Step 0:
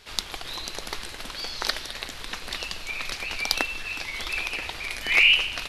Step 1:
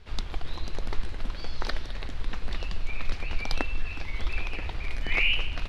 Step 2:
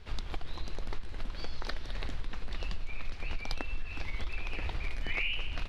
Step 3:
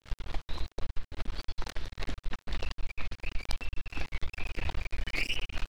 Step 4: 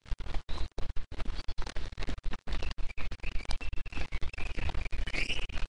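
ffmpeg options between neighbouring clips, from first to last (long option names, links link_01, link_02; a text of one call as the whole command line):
ffmpeg -i in.wav -af "aemphasis=mode=reproduction:type=riaa,volume=-4.5dB" out.wav
ffmpeg -i in.wav -af "acompressor=threshold=-28dB:ratio=6" out.wav
ffmpeg -i in.wav -af "aeval=exprs='max(val(0),0)':channel_layout=same,volume=4dB" out.wav
ffmpeg -i in.wav -filter_complex "[0:a]asplit=2[link_01][link_02];[link_02]acrusher=samples=33:mix=1:aa=0.000001:lfo=1:lforange=52.8:lforate=3.1,volume=-12dB[link_03];[link_01][link_03]amix=inputs=2:normalize=0,volume=-1.5dB" -ar 22050 -c:a libvorbis -b:a 48k out.ogg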